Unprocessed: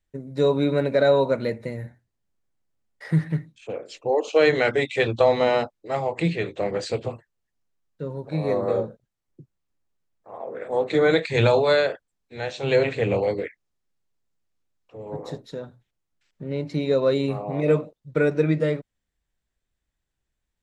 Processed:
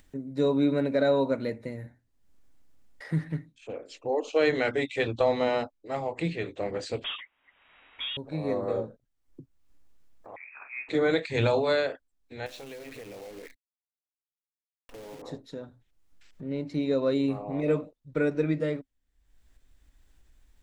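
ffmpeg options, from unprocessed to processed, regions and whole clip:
-filter_complex "[0:a]asettb=1/sr,asplit=3[s0][s1][s2];[s0]atrim=end=7.044[s3];[s1]atrim=start=7.04:end=8.17,asetpts=PTS-STARTPTS,afade=t=in:d=0.004:c=qsin,afade=t=out:st=1.126:d=0.004:c=qsin,tiltshelf=f=800:g=-9,asplit=2[s4][s5];[s5]highpass=f=720:p=1,volume=28.2,asoftclip=type=tanh:threshold=0.0944[s6];[s4][s6]amix=inputs=2:normalize=0,lowpass=f=2500:p=1,volume=0.501,lowpass=f=3200:t=q:w=0.5098,lowpass=f=3200:t=q:w=0.6013,lowpass=f=3200:t=q:w=0.9,lowpass=f=3200:t=q:w=2.563,afreqshift=-3800[s7];[s2]atrim=start=8.166[s8];[s3][s7]acrossfade=d=0.004:c1=hsin:c2=qsin[s9];[s9][s8]acrossfade=d=0.004:c1=qsin:c2=hsin,asettb=1/sr,asplit=3[s10][s11][s12];[s10]atrim=end=10.364[s13];[s11]atrim=start=10.36:end=10.89,asetpts=PTS-STARTPTS,afade=t=in:d=0.004:c=qsin,afade=t=out:st=0.526:d=0.004:c=qsin,highpass=820,tiltshelf=f=1100:g=-3.5,lowpass=f=2600:t=q:w=0.5098,lowpass=f=2600:t=q:w=0.6013,lowpass=f=2600:t=q:w=0.9,lowpass=f=2600:t=q:w=2.563,afreqshift=-3000[s14];[s12]atrim=start=10.886[s15];[s13][s14]acrossfade=d=0.004:c1=hsin:c2=qsin[s16];[s16][s15]acrossfade=d=0.004:c1=qsin:c2=hsin,asettb=1/sr,asplit=3[s17][s18][s19];[s17]atrim=end=12.464[s20];[s18]atrim=start=12.46:end=15.22,asetpts=PTS-STARTPTS,afade=t=in:d=0.004:c=qsin,afade=t=out:st=2.756:d=0.004:c=qsin,acompressor=threshold=0.0224:ratio=12:attack=3.2:release=140:knee=1:detection=peak,acrusher=bits=8:dc=4:mix=0:aa=0.000001,equalizer=f=94:w=1.2:g=-9.5[s21];[s19]atrim=start=15.216[s22];[s20][s21]acrossfade=d=0.004:c1=hsin:c2=qsin[s23];[s23][s22]acrossfade=d=0.004:c1=qsin:c2=hsin,asubboost=boost=3:cutoff=74,acompressor=mode=upward:threshold=0.0178:ratio=2.5,equalizer=f=270:w=4.8:g=8.5,volume=0.501"

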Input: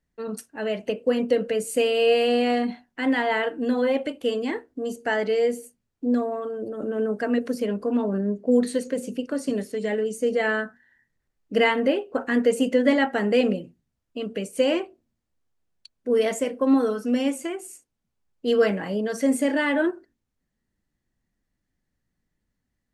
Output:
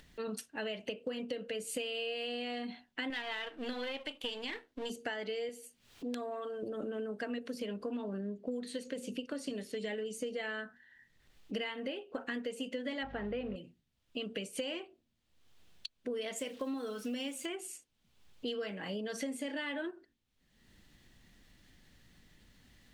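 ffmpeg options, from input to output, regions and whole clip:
-filter_complex "[0:a]asettb=1/sr,asplit=3[s0][s1][s2];[s0]atrim=end=3.104[s3];[s1]atrim=start=3.1:end=4.9,asetpts=PTS-STARTPTS,afade=t=in:d=0.004:c=qsin,afade=t=out:st=1.796:d=0.004:c=qsin,aeval=exprs='if(lt(val(0),0),0.447*val(0),val(0))':c=same,tiltshelf=f=730:g=-4.5[s4];[s2]atrim=start=4.896[s5];[s3][s4]acrossfade=d=0.004:c1=hsin:c2=qsin[s6];[s6][s5]acrossfade=d=0.004:c1=qsin:c2=hsin,asettb=1/sr,asplit=3[s7][s8][s9];[s7]atrim=end=5.494[s10];[s8]atrim=start=5.49:end=6.63,asetpts=PTS-STARTPTS,afade=t=in:d=0.004:c=qsin,afade=t=out:st=1.136:d=0.004:c=qsin,lowshelf=f=350:g=-10,acompressor=mode=upward:threshold=0.00708:ratio=2.5:attack=3.2:release=140:knee=2.83:detection=peak,aeval=exprs='(mod(9.44*val(0)+1,2)-1)/9.44':c=same[s11];[s9]atrim=start=6.626[s12];[s10][s11]acrossfade=d=0.004:c1=hsin:c2=qsin[s13];[s13][s12]acrossfade=d=0.004:c1=qsin:c2=hsin,asettb=1/sr,asplit=3[s14][s15][s16];[s14]atrim=end=13.034[s17];[s15]atrim=start=13.03:end=13.56,asetpts=PTS-STARTPTS,afade=t=in:d=0.004:c=qsin,afade=t=out:st=0.526:d=0.004:c=qsin,aeval=exprs='val(0)+0.5*0.0168*sgn(val(0))':c=same,lowpass=1700,aeval=exprs='val(0)+0.02*(sin(2*PI*50*n/s)+sin(2*PI*2*50*n/s)/2+sin(2*PI*3*50*n/s)/3+sin(2*PI*4*50*n/s)/4+sin(2*PI*5*50*n/s)/5)':c=same[s18];[s16]atrim=start=13.556[s19];[s17][s18]acrossfade=d=0.004:c1=hsin:c2=qsin[s20];[s20][s19]acrossfade=d=0.004:c1=qsin:c2=hsin,asettb=1/sr,asplit=3[s21][s22][s23];[s21]atrim=end=16.364[s24];[s22]atrim=start=16.36:end=17.46,asetpts=PTS-STARTPTS,afade=t=in:d=0.004:c=qsin,afade=t=out:st=1.096:d=0.004:c=qsin,highshelf=f=6100:g=7,acrusher=bits=9:dc=4:mix=0:aa=0.000001[s25];[s23]atrim=start=17.456[s26];[s24][s25]acrossfade=d=0.004:c1=hsin:c2=qsin[s27];[s27][s26]acrossfade=d=0.004:c1=qsin:c2=hsin,acompressor=mode=upward:threshold=0.01:ratio=2.5,equalizer=f=3300:w=1.1:g=11,acompressor=threshold=0.0316:ratio=12,volume=0.562"

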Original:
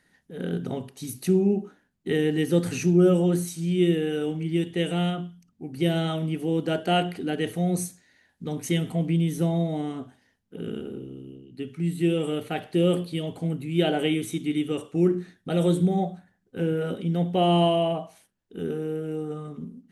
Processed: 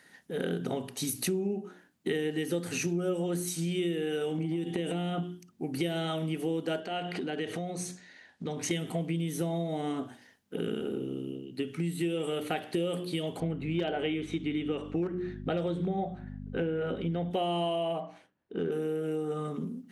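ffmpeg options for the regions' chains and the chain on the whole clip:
-filter_complex "[0:a]asettb=1/sr,asplit=3[s0][s1][s2];[s0]atrim=end=4.384[s3];[s1]atrim=start=4.38:end=5.23,asetpts=PTS-STARTPTS,afade=t=in:d=0.004:c=qsin,afade=t=out:st=0.846:d=0.004:c=qsin,equalizer=f=240:t=o:w=2:g=9,acompressor=threshold=0.0631:ratio=10:attack=3.2:release=140:knee=1:detection=peak,aeval=exprs='val(0)+0.00141*sin(2*PI*770*n/s)':c=same[s4];[s2]atrim=start=5.226[s5];[s3][s4]acrossfade=d=0.004:c1=hsin:c2=qsin[s6];[s6][s5]acrossfade=d=0.004:c1=qsin:c2=hsin,asettb=1/sr,asplit=3[s7][s8][s9];[s7]atrim=end=6.804[s10];[s8]atrim=start=6.8:end=8.71,asetpts=PTS-STARTPTS,afade=t=in:d=0.004:c=qsin,afade=t=out:st=1.906:d=0.004:c=qsin,lowpass=5900,acompressor=threshold=0.0178:ratio=4:attack=3.2:release=140:knee=1:detection=peak[s11];[s9]atrim=start=8.706[s12];[s10][s11]acrossfade=d=0.004:c1=hsin:c2=qsin[s13];[s13][s12]acrossfade=d=0.004:c1=qsin:c2=hsin,asettb=1/sr,asplit=3[s14][s15][s16];[s14]atrim=end=13.404[s17];[s15]atrim=start=13.4:end=17.31,asetpts=PTS-STARTPTS,afade=t=in:d=0.004:c=qsin,afade=t=out:st=3.906:d=0.004:c=qsin,lowpass=3000,asoftclip=type=hard:threshold=0.211,aeval=exprs='val(0)+0.0141*(sin(2*PI*50*n/s)+sin(2*PI*2*50*n/s)/2+sin(2*PI*3*50*n/s)/3+sin(2*PI*4*50*n/s)/4+sin(2*PI*5*50*n/s)/5)':c=same[s18];[s16]atrim=start=17.306[s19];[s17][s18]acrossfade=d=0.004:c1=hsin:c2=qsin[s20];[s20][s19]acrossfade=d=0.004:c1=qsin:c2=hsin,asettb=1/sr,asplit=3[s21][s22][s23];[s21]atrim=end=18.004[s24];[s22]atrim=start=18:end=18.72,asetpts=PTS-STARTPTS,afade=t=in:d=0.004:c=qsin,afade=t=out:st=0.716:d=0.004:c=qsin,adynamicsmooth=sensitivity=2.5:basefreq=2400,asplit=2[s25][s26];[s26]adelay=23,volume=0.251[s27];[s25][s27]amix=inputs=2:normalize=0,atrim=end_sample=31752[s28];[s23]atrim=start=18.716[s29];[s24][s28]acrossfade=d=0.004:c1=hsin:c2=qsin[s30];[s30][s29]acrossfade=d=0.004:c1=qsin:c2=hsin,highpass=f=270:p=1,bandreject=f=60:t=h:w=6,bandreject=f=120:t=h:w=6,bandreject=f=180:t=h:w=6,bandreject=f=240:t=h:w=6,bandreject=f=300:t=h:w=6,bandreject=f=360:t=h:w=6,acompressor=threshold=0.0141:ratio=6,volume=2.51"

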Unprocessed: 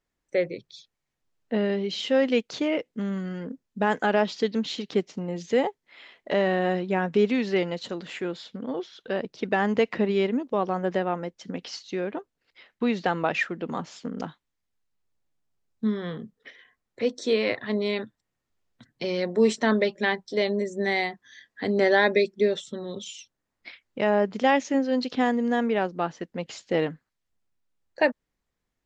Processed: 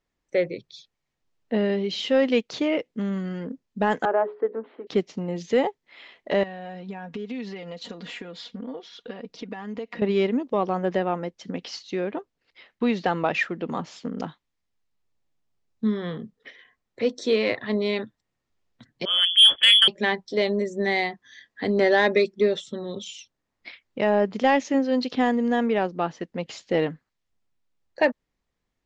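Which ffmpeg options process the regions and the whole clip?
-filter_complex "[0:a]asettb=1/sr,asplit=3[s0][s1][s2];[s0]atrim=end=4.054[s3];[s1]atrim=start=4.05:end=4.87,asetpts=PTS-STARTPTS,afade=t=in:d=0.004:c=qsin,afade=t=out:st=0.816:d=0.004:c=qsin,asuperpass=centerf=690:order=8:qfactor=0.57,bandreject=f=60:t=h:w=6,bandreject=f=120:t=h:w=6,bandreject=f=180:t=h:w=6,bandreject=f=240:t=h:w=6,bandreject=f=300:t=h:w=6,bandreject=f=360:t=h:w=6,bandreject=f=420:t=h:w=6,bandreject=f=480:t=h:w=6,bandreject=f=540:t=h:w=6,bandreject=f=600:t=h:w=6[s4];[s2]atrim=start=4.866[s5];[s3][s4]acrossfade=d=0.004:c1=hsin:c2=qsin[s6];[s6][s5]acrossfade=d=0.004:c1=qsin:c2=hsin,asettb=1/sr,asplit=3[s7][s8][s9];[s7]atrim=end=6.434[s10];[s8]atrim=start=6.43:end=10.02,asetpts=PTS-STARTPTS,afade=t=in:d=0.004:c=qsin,afade=t=out:st=3.586:d=0.004:c=qsin,acompressor=threshold=0.0158:ratio=5:attack=3.2:release=140:knee=1:detection=peak,aecho=1:1:4.2:0.61,atrim=end_sample=158319[s11];[s9]atrim=start=10.016[s12];[s10][s11]acrossfade=d=0.004:c1=hsin:c2=qsin[s13];[s13][s12]acrossfade=d=0.004:c1=qsin:c2=hsin,asettb=1/sr,asplit=3[s14][s15][s16];[s14]atrim=end=19.054[s17];[s15]atrim=start=19.05:end=19.88,asetpts=PTS-STARTPTS,afade=t=in:d=0.004:c=qsin,afade=t=out:st=0.826:d=0.004:c=qsin,lowpass=f=3100:t=q:w=0.5098,lowpass=f=3100:t=q:w=0.6013,lowpass=f=3100:t=q:w=0.9,lowpass=f=3100:t=q:w=2.563,afreqshift=-3600,adynamicequalizer=threshold=0.0224:dfrequency=1500:dqfactor=0.7:tfrequency=1500:tqfactor=0.7:attack=5:release=100:ratio=0.375:range=3:mode=boostabove:tftype=highshelf[s18];[s16]atrim=start=19.876[s19];[s17][s18]acrossfade=d=0.004:c1=hsin:c2=qsin[s20];[s20][s19]acrossfade=d=0.004:c1=qsin:c2=hsin,lowpass=6800,equalizer=f=1500:w=5.8:g=-3,acontrast=64,volume=0.596"

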